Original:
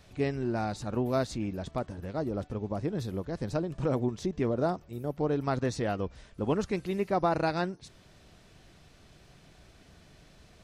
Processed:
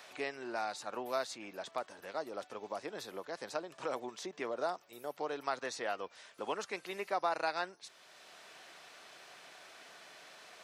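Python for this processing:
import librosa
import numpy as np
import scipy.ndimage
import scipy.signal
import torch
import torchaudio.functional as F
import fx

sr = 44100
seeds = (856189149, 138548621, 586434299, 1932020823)

y = scipy.signal.sosfilt(scipy.signal.butter(2, 760.0, 'highpass', fs=sr, output='sos'), x)
y = fx.band_squash(y, sr, depth_pct=40)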